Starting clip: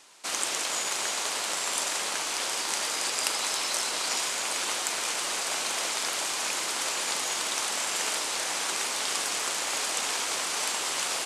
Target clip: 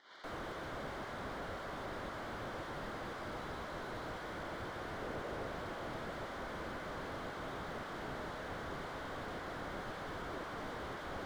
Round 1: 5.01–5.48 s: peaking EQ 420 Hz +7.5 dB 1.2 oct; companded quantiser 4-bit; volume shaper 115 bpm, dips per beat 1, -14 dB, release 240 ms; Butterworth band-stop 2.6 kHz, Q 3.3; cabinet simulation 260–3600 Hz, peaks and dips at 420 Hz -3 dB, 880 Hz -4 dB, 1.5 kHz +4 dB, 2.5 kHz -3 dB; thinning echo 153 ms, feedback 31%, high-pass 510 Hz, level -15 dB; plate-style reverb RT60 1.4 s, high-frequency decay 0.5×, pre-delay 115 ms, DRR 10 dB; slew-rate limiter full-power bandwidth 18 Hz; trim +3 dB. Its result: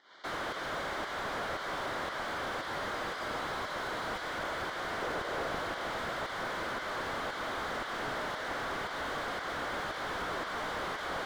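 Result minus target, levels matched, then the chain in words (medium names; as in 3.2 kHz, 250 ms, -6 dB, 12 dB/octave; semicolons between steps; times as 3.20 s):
slew-rate limiter: distortion -10 dB
5.01–5.48 s: peaking EQ 420 Hz +7.5 dB 1.2 oct; companded quantiser 4-bit; volume shaper 115 bpm, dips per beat 1, -14 dB, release 240 ms; Butterworth band-stop 2.6 kHz, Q 3.3; cabinet simulation 260–3600 Hz, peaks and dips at 420 Hz -3 dB, 880 Hz -4 dB, 1.5 kHz +4 dB, 2.5 kHz -3 dB; thinning echo 153 ms, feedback 31%, high-pass 510 Hz, level -15 dB; plate-style reverb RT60 1.4 s, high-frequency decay 0.5×, pre-delay 115 ms, DRR 10 dB; slew-rate limiter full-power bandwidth 5.5 Hz; trim +3 dB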